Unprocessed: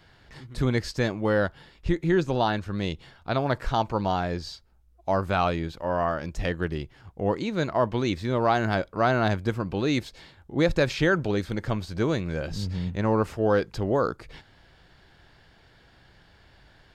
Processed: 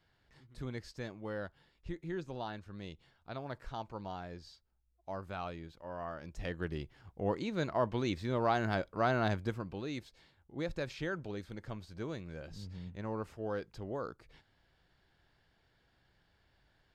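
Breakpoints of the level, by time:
0:05.96 −17 dB
0:06.79 −8 dB
0:09.40 −8 dB
0:09.89 −15.5 dB

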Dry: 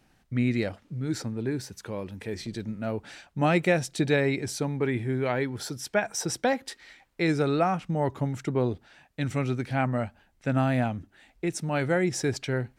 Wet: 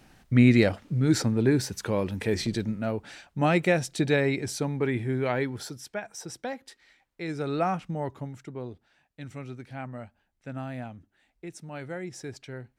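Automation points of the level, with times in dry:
0:02.44 +7.5 dB
0:02.99 0 dB
0:05.49 0 dB
0:06.00 −9.5 dB
0:07.25 −9.5 dB
0:07.69 −1 dB
0:08.50 −11.5 dB

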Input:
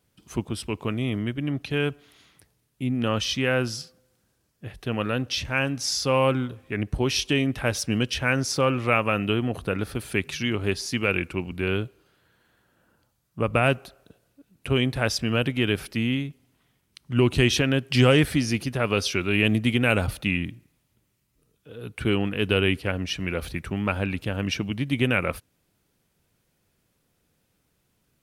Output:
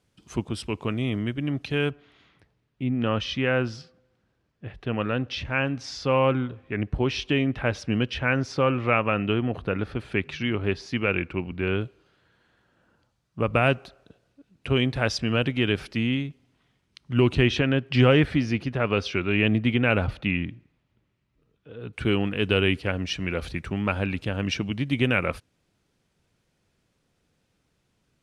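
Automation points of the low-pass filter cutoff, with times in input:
8,000 Hz
from 0:01.90 3,000 Hz
from 0:11.81 5,700 Hz
from 0:17.35 3,000 Hz
from 0:21.93 7,100 Hz

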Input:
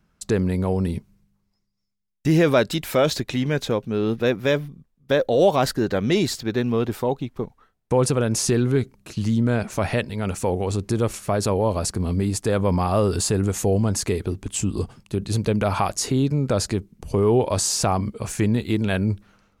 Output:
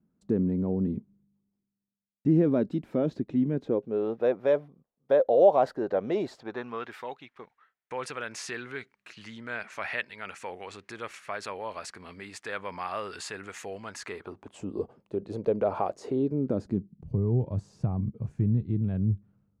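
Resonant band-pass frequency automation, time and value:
resonant band-pass, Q 1.8
0:03.56 250 Hz
0:04.06 630 Hz
0:06.32 630 Hz
0:06.93 1,900 Hz
0:13.94 1,900 Hz
0:14.71 500 Hz
0:16.11 500 Hz
0:17.10 130 Hz

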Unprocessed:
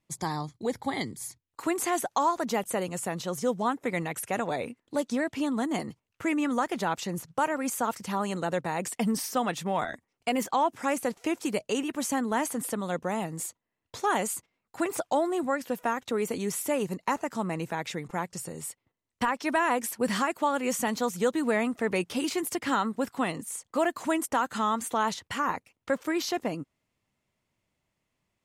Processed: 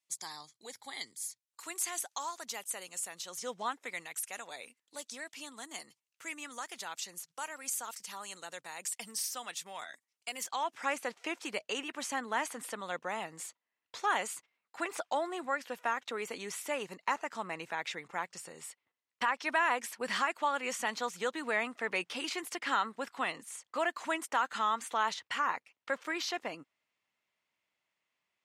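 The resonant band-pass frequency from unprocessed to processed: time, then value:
resonant band-pass, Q 0.6
0:03.24 7,300 Hz
0:03.56 2,800 Hz
0:04.09 7,500 Hz
0:10.35 7,500 Hz
0:10.85 2,300 Hz

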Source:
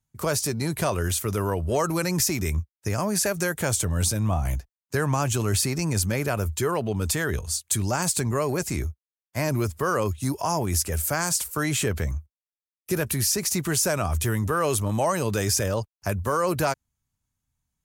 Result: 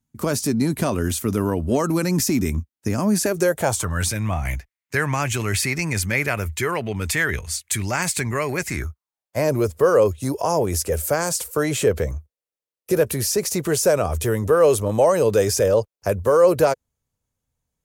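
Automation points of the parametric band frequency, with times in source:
parametric band +14 dB 0.78 octaves
0:03.19 250 Hz
0:04.10 2,100 Hz
0:08.65 2,100 Hz
0:09.41 490 Hz

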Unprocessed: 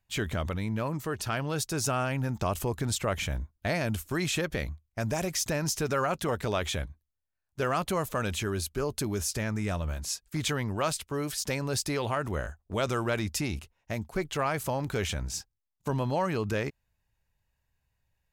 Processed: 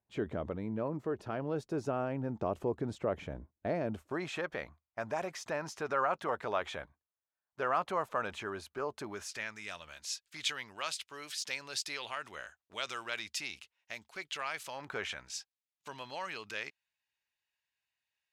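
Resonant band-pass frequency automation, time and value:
resonant band-pass, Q 1
0:03.84 410 Hz
0:04.39 1,000 Hz
0:09.03 1,000 Hz
0:09.56 3,200 Hz
0:14.72 3,200 Hz
0:14.92 1,100 Hz
0:15.36 3,100 Hz

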